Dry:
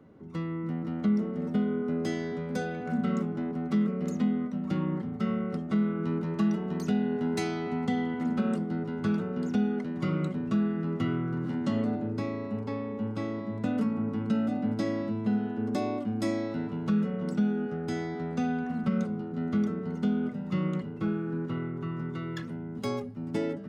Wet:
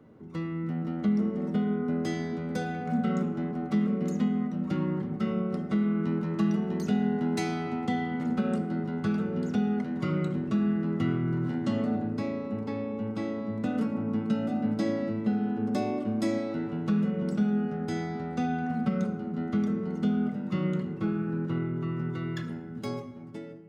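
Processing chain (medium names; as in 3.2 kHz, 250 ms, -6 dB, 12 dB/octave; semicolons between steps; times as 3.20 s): fade out at the end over 1.17 s; on a send: reverberation RT60 1.5 s, pre-delay 6 ms, DRR 8 dB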